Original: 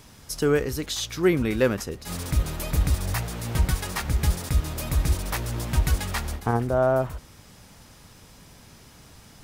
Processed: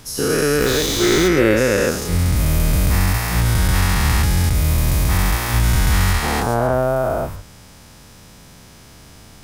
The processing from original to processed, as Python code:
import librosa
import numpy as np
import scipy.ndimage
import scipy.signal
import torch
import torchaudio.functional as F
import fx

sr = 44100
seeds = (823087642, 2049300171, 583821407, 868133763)

y = fx.spec_dilate(x, sr, span_ms=480)
y = fx.dmg_noise_colour(y, sr, seeds[0], colour='pink', level_db=-28.0, at=(0.6, 1.27), fade=0.02)